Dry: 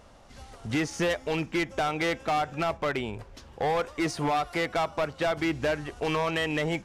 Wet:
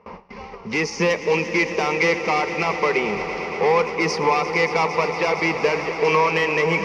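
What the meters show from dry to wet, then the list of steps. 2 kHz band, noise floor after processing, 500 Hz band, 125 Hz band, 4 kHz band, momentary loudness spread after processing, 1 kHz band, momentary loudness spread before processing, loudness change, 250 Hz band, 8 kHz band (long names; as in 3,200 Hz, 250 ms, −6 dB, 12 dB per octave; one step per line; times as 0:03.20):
+10.5 dB, −38 dBFS, +9.0 dB, +3.5 dB, +5.5 dB, 7 LU, +8.0 dB, 4 LU, +8.5 dB, +4.0 dB, +6.5 dB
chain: low-pass that shuts in the quiet parts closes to 1,900 Hz, open at −25 dBFS
noise gate with hold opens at −43 dBFS
EQ curve with evenly spaced ripples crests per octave 0.83, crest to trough 14 dB
reversed playback
upward compression, threshold −27 dBFS
reversed playback
three-way crossover with the lows and the highs turned down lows −16 dB, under 160 Hz, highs −21 dB, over 7,200 Hz
echo that builds up and dies away 115 ms, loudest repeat 5, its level −14.5 dB
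level +6 dB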